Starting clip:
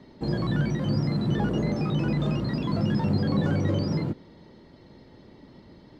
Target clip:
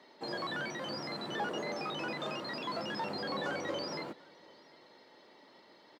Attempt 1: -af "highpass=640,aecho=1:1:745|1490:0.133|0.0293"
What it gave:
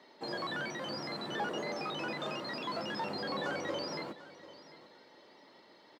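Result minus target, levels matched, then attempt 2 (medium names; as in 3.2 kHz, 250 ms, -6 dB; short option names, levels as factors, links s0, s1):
echo-to-direct +8.5 dB
-af "highpass=640,aecho=1:1:745|1490:0.0501|0.011"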